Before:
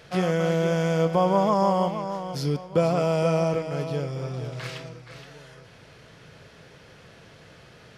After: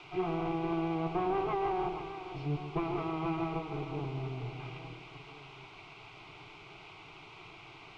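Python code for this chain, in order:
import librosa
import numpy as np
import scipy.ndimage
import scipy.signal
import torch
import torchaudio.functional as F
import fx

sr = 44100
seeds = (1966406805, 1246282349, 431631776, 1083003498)

p1 = fx.lower_of_two(x, sr, delay_ms=2.5)
p2 = fx.highpass(p1, sr, hz=86.0, slope=6)
p3 = fx.tilt_eq(p2, sr, slope=-2.5)
p4 = fx.quant_dither(p3, sr, seeds[0], bits=6, dither='triangular')
p5 = fx.fixed_phaser(p4, sr, hz=350.0, stages=8)
p6 = 10.0 ** (-22.5 / 20.0) * np.tanh(p5 / 10.0 ** (-22.5 / 20.0))
p7 = p5 + (p6 * 10.0 ** (-10.0 / 20.0))
p8 = fx.ladder_lowpass(p7, sr, hz=2600.0, resonance_pct=60)
p9 = p8 + 10.0 ** (-10.0 / 20.0) * np.pad(p8, (int(142 * sr / 1000.0), 0))[:len(p8)]
y = p9 * 10.0 ** (1.5 / 20.0)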